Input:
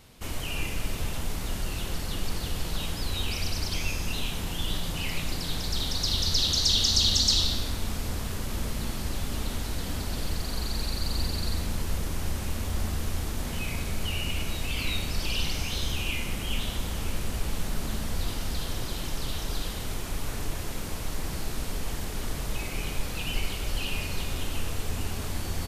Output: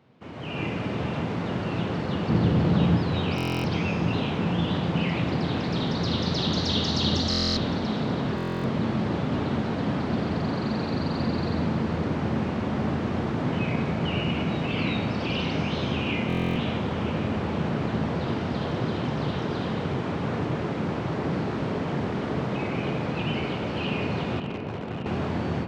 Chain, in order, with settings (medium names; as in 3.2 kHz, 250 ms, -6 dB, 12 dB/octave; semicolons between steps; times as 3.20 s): tape spacing loss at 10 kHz 42 dB; level rider gain up to 12 dB; 2.29–2.97 s: bass shelf 360 Hz +10 dB; 24.39–25.06 s: valve stage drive 27 dB, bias 0.75; high-pass 120 Hz 24 dB/octave; filtered feedback delay 564 ms, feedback 83%, low-pass 2.7 kHz, level -9 dB; buffer glitch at 3.36/7.29/8.36/16.28 s, samples 1024, times 11